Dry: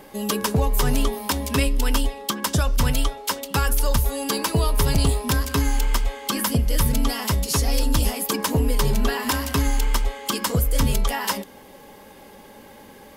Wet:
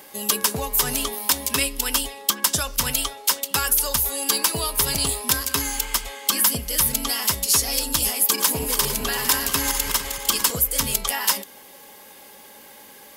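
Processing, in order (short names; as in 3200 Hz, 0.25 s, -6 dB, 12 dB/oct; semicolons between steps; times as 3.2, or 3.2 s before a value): 8.14–10.51 regenerating reverse delay 0.227 s, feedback 56%, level -7 dB; tilt +3 dB/oct; gain -1.5 dB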